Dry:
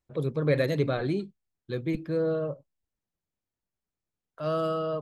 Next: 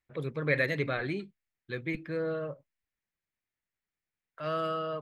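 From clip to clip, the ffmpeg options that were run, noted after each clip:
-af "equalizer=f=2k:w=1.2:g=14.5,volume=-6.5dB"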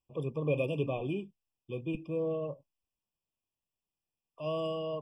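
-af "afftfilt=real='re*eq(mod(floor(b*sr/1024/1200),2),0)':imag='im*eq(mod(floor(b*sr/1024/1200),2),0)':win_size=1024:overlap=0.75"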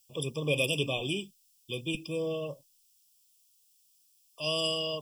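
-af "aexciter=amount=13.9:drive=7:freq=3k"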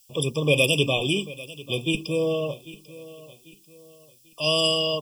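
-af "aecho=1:1:793|1586|2379:0.119|0.0464|0.0181,volume=8.5dB"

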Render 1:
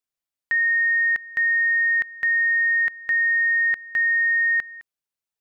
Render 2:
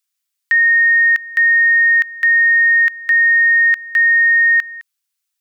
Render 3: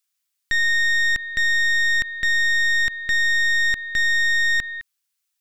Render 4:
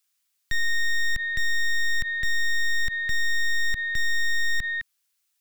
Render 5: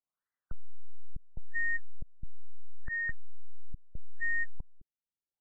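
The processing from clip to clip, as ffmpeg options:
-af "highpass=f=1k:w=0.5412,highpass=f=1k:w=1.3066,highshelf=f=2.1k:g=10,volume=4dB"
-af "alimiter=limit=-14.5dB:level=0:latency=1:release=39,aeval=exprs='(tanh(12.6*val(0)+0.8)-tanh(0.8))/12.6':c=same,volume=4.5dB"
-filter_complex "[0:a]acrossover=split=170|4200[a][b][c];[b]alimiter=level_in=3dB:limit=-24dB:level=0:latency=1,volume=-3dB[d];[c]asoftclip=type=tanh:threshold=-39.5dB[e];[a][d][e]amix=inputs=3:normalize=0,volume=3dB"
-af "afftfilt=real='re*lt(b*sr/1024,300*pow(2100/300,0.5+0.5*sin(2*PI*0.75*pts/sr)))':imag='im*lt(b*sr/1024,300*pow(2100/300,0.5+0.5*sin(2*PI*0.75*pts/sr)))':win_size=1024:overlap=0.75,volume=-4.5dB"

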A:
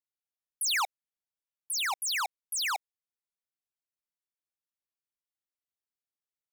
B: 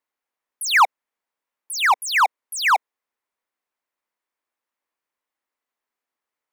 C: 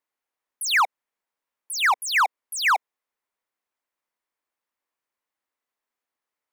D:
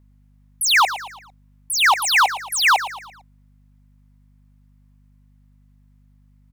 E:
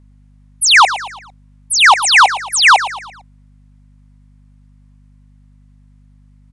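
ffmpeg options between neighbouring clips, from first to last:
-af "equalizer=f=125:t=o:w=1:g=-11,equalizer=f=250:t=o:w=1:g=9,equalizer=f=500:t=o:w=1:g=8,equalizer=f=1k:t=o:w=1:g=12,equalizer=f=2k:t=o:w=1:g=9,volume=2.5dB"
-af "alimiter=limit=-13dB:level=0:latency=1:release=119,volume=-1.5dB"
-af "volume=19.5dB,asoftclip=hard,volume=-19.5dB,aeval=exprs='val(0)+0.001*(sin(2*PI*50*n/s)+sin(2*PI*2*50*n/s)/2+sin(2*PI*3*50*n/s)/3+sin(2*PI*4*50*n/s)/4+sin(2*PI*5*50*n/s)/5)':c=same,aecho=1:1:113|226|339|452:0.224|0.0985|0.0433|0.0191,volume=7.5dB"
-af "aresample=22050,aresample=44100,volume=7.5dB"

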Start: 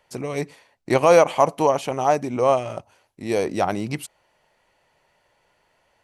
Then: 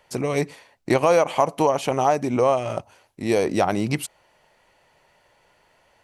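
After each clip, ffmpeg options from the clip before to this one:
-af "acompressor=threshold=-21dB:ratio=3,volume=4.5dB"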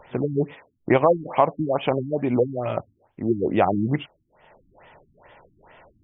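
-af "acompressor=mode=upward:threshold=-41dB:ratio=2.5,afftfilt=real='re*lt(b*sr/1024,310*pow(3700/310,0.5+0.5*sin(2*PI*2.3*pts/sr)))':imag='im*lt(b*sr/1024,310*pow(3700/310,0.5+0.5*sin(2*PI*2.3*pts/sr)))':win_size=1024:overlap=0.75,volume=1.5dB"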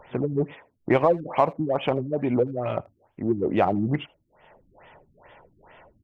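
-filter_complex "[0:a]asplit=2[a][b];[b]asoftclip=type=tanh:threshold=-22dB,volume=-10dB[c];[a][c]amix=inputs=2:normalize=0,asplit=2[d][e];[e]adelay=80,highpass=300,lowpass=3.4k,asoftclip=type=hard:threshold=-14dB,volume=-24dB[f];[d][f]amix=inputs=2:normalize=0,volume=-3dB"

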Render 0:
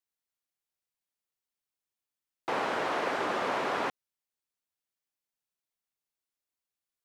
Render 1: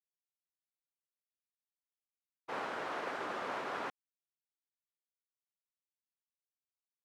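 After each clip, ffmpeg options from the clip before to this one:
-af "equalizer=f=1.4k:w=2.1:g=3,agate=range=-33dB:threshold=-27dB:ratio=3:detection=peak,volume=-8dB"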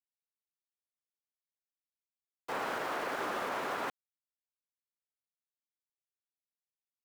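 -af "aeval=exprs='val(0)*gte(abs(val(0)),0.00398)':c=same,alimiter=level_in=7.5dB:limit=-24dB:level=0:latency=1:release=36,volume=-7.5dB,volume=5dB"

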